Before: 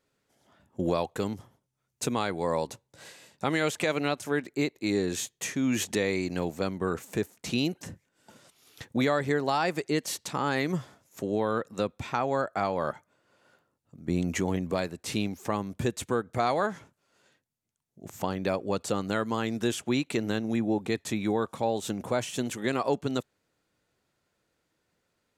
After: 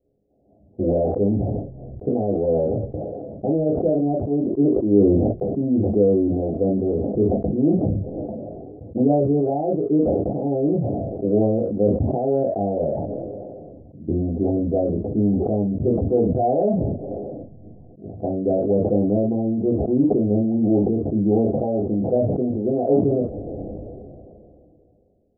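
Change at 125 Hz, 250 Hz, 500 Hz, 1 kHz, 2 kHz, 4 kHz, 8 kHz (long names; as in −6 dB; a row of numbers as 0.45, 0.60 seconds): +11.0 dB, +11.0 dB, +10.0 dB, +1.0 dB, below −35 dB, below −40 dB, below −40 dB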